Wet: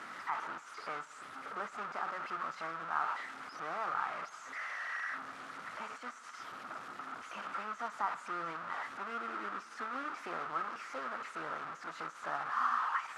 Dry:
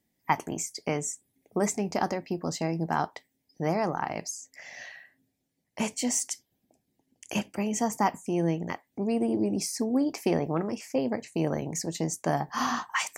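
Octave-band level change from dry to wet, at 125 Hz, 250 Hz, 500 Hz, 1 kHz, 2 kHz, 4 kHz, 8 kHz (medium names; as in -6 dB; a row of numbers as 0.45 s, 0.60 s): -27.0 dB, -24.0 dB, -16.5 dB, -4.0 dB, -2.0 dB, -12.0 dB, -25.0 dB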